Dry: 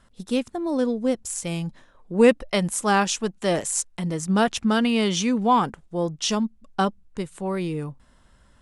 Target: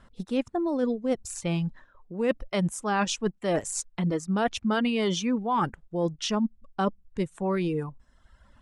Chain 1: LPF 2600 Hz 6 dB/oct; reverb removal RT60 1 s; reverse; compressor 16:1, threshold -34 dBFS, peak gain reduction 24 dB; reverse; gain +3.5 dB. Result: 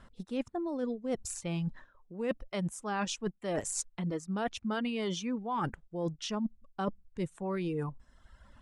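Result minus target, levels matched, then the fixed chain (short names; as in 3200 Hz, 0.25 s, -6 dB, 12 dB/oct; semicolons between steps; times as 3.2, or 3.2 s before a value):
compressor: peak gain reduction +8 dB
LPF 2600 Hz 6 dB/oct; reverb removal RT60 1 s; reverse; compressor 16:1, threshold -25.5 dBFS, peak gain reduction 16 dB; reverse; gain +3.5 dB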